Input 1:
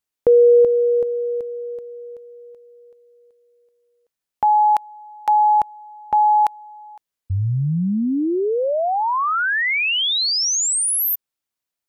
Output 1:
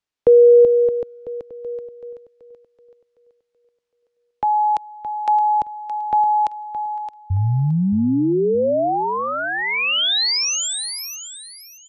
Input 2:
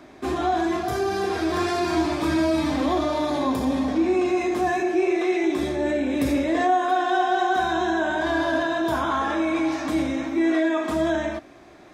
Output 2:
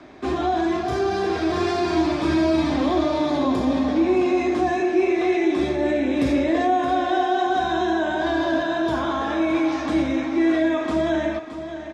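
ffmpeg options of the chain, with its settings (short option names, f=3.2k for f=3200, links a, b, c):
-filter_complex "[0:a]lowpass=5.5k,acrossover=split=310|770|2500[a][b][c][d];[c]acompressor=threshold=-30dB:ratio=6:attack=0.18:release=36:knee=6:detection=rms[e];[a][b][e][d]amix=inputs=4:normalize=0,aecho=1:1:619|1238|1857:0.282|0.0676|0.0162,volume=2dB"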